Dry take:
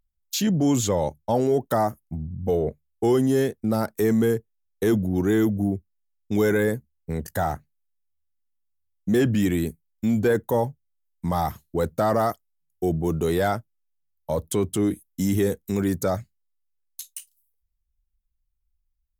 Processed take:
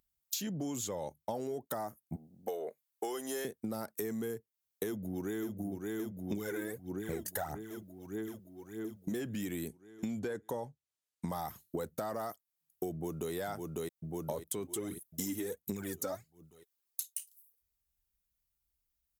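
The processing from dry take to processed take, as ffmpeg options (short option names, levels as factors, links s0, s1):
-filter_complex "[0:a]asettb=1/sr,asplit=3[s0][s1][s2];[s0]atrim=end=2.164[s3];[s1]atrim=start=2.16:end=3.45,asetpts=PTS-STARTPTS,afade=t=in:d=0.004:c=qsin,afade=t=out:st=1.286:d=0.004:c=qsin,highpass=570[s4];[s2]atrim=start=3.446[s5];[s3][s4]acrossfade=d=0.004:c1=hsin:c2=qsin[s6];[s6][s5]acrossfade=d=0.004:c1=qsin:c2=hsin,asplit=2[s7][s8];[s8]afade=t=in:st=4.85:d=0.01,afade=t=out:st=5.54:d=0.01,aecho=0:1:570|1140|1710|2280|2850|3420|3990|4560|5130:0.375837|0.244294|0.158791|0.103214|0.0670893|0.0436081|0.0283452|0.0184244|0.0119759[s9];[s7][s9]amix=inputs=2:normalize=0,asettb=1/sr,asplit=3[s10][s11][s12];[s10]atrim=end=6.324[s13];[s11]atrim=start=6.32:end=9.12,asetpts=PTS-STARTPTS,afade=t=in:d=0.004:c=qsin,afade=t=out:st=2.796:d=0.004:c=qsin,aphaser=in_gain=1:out_gain=1:delay=3.2:decay=0.63:speed=1.6:type=sinusoidal[s14];[s12]atrim=start=9.116[s15];[s13][s14]acrossfade=d=0.004:c1=hsin:c2=qsin[s16];[s16][s15]acrossfade=d=0.004:c1=qsin:c2=hsin,asettb=1/sr,asplit=3[s17][s18][s19];[s17]atrim=end=9.684[s20];[s18]atrim=start=9.68:end=11.29,asetpts=PTS-STARTPTS,afade=t=in:d=0.004:c=qsin,afade=t=out:st=1.606:d=0.004:c=qsin,lowpass=8600[s21];[s19]atrim=start=11.286[s22];[s20][s21]acrossfade=d=0.004:c1=hsin:c2=qsin[s23];[s23][s22]acrossfade=d=0.004:c1=qsin:c2=hsin,asplit=2[s24][s25];[s25]afade=t=in:st=12.92:d=0.01,afade=t=out:st=13.33:d=0.01,aecho=0:1:550|1100|1650|2200|2750|3300:0.501187|0.250594|0.125297|0.0626484|0.0313242|0.0156621[s26];[s24][s26]amix=inputs=2:normalize=0,asplit=3[s27][s28][s29];[s27]afade=t=out:st=14.64:d=0.02[s30];[s28]aphaser=in_gain=1:out_gain=1:delay=3.9:decay=0.64:speed=1.4:type=triangular,afade=t=in:st=14.64:d=0.02,afade=t=out:st=17.05:d=0.02[s31];[s29]afade=t=in:st=17.05:d=0.02[s32];[s30][s31][s32]amix=inputs=3:normalize=0,highpass=f=200:p=1,highshelf=f=6300:g=8,acompressor=threshold=0.0158:ratio=16,volume=1.19"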